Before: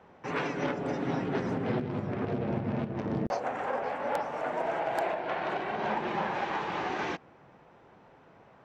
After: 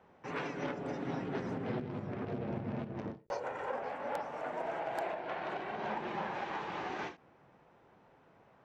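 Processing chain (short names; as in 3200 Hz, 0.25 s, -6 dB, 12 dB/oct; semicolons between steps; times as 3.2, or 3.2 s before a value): 3.19–3.72 comb 2.1 ms, depth 52%; ending taper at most 200 dB/s; gain -6.5 dB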